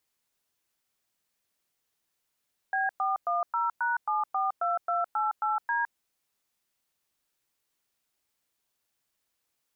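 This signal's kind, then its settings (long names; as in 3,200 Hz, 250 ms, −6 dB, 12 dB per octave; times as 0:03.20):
touch tones "B410#742288D", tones 162 ms, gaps 107 ms, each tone −27.5 dBFS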